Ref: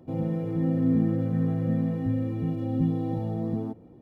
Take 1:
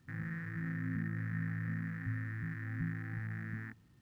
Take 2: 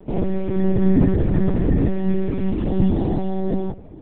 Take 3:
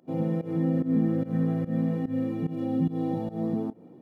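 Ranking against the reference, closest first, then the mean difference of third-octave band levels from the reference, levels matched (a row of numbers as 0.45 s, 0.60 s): 3, 2, 1; 2.5 dB, 5.5 dB, 8.5 dB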